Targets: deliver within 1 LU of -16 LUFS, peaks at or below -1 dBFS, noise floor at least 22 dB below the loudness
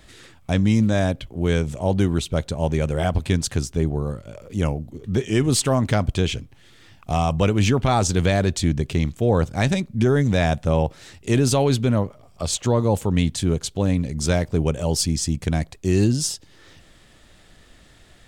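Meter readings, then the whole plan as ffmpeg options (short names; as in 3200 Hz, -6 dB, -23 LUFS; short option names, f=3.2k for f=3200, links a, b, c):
loudness -22.0 LUFS; peak -7.5 dBFS; loudness target -16.0 LUFS
-> -af "volume=6dB"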